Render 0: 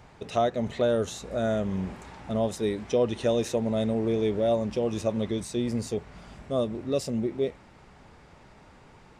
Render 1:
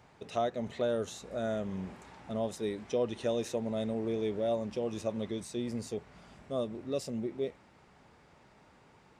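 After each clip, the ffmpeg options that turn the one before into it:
ffmpeg -i in.wav -af "highpass=frequency=110:poles=1,volume=-6.5dB" out.wav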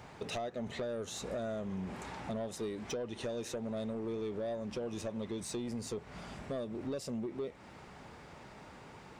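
ffmpeg -i in.wav -af "acompressor=threshold=-41dB:ratio=12,asoftclip=type=tanh:threshold=-39.5dB,volume=8.5dB" out.wav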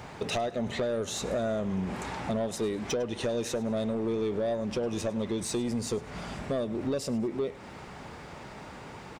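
ffmpeg -i in.wav -af "aecho=1:1:103|206|309:0.1|0.044|0.0194,volume=8dB" out.wav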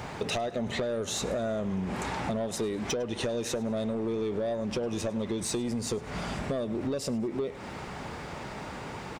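ffmpeg -i in.wav -af "acompressor=threshold=-34dB:ratio=4,volume=5dB" out.wav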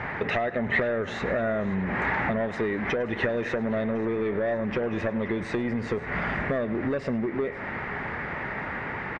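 ffmpeg -i in.wav -af "lowpass=frequency=1900:width_type=q:width=4.4,aecho=1:1:527|1054|1581|2108|2635:0.112|0.0662|0.0391|0.023|0.0136,volume=3dB" out.wav

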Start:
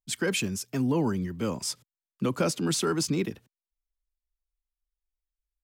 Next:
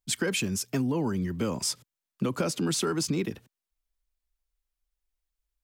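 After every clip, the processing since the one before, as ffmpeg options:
ffmpeg -i in.wav -af "acompressor=threshold=-29dB:ratio=6,volume=4.5dB" out.wav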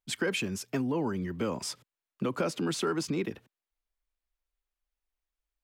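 ffmpeg -i in.wav -af "bass=frequency=250:gain=-6,treble=frequency=4000:gain=-9" out.wav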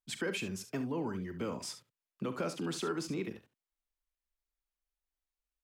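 ffmpeg -i in.wav -af "aecho=1:1:42|70:0.211|0.251,volume=-6dB" out.wav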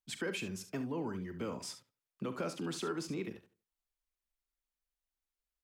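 ffmpeg -i in.wav -filter_complex "[0:a]asplit=2[link_01][link_02];[link_02]adelay=81,lowpass=frequency=2500:poles=1,volume=-22.5dB,asplit=2[link_03][link_04];[link_04]adelay=81,lowpass=frequency=2500:poles=1,volume=0.39,asplit=2[link_05][link_06];[link_06]adelay=81,lowpass=frequency=2500:poles=1,volume=0.39[link_07];[link_01][link_03][link_05][link_07]amix=inputs=4:normalize=0,volume=-2dB" out.wav

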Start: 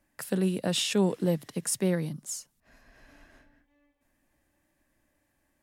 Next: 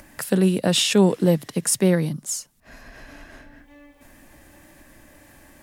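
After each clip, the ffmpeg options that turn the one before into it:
ffmpeg -i in.wav -af "acompressor=mode=upward:threshold=-44dB:ratio=2.5,volume=8.5dB" out.wav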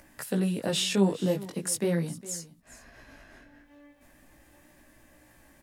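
ffmpeg -i in.wav -af "flanger=delay=16:depth=4.9:speed=0.4,aecho=1:1:409:0.126,volume=-5dB" out.wav

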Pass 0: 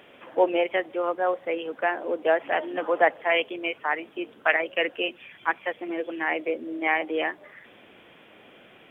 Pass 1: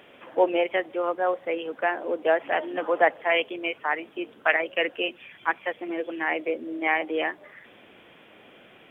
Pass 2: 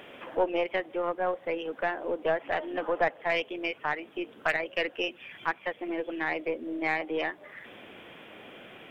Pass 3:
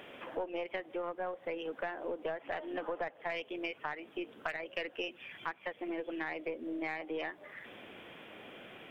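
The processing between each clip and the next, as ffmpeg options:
ffmpeg -i in.wav -af anull out.wav
ffmpeg -i in.wav -af "acompressor=threshold=-45dB:ratio=1.5,aeval=exprs='0.141*(cos(1*acos(clip(val(0)/0.141,-1,1)))-cos(1*PI/2))+0.01*(cos(4*acos(clip(val(0)/0.141,-1,1)))-cos(4*PI/2))':channel_layout=same,volume=4dB" out.wav
ffmpeg -i in.wav -af "acompressor=threshold=-31dB:ratio=6,volume=-3dB" out.wav

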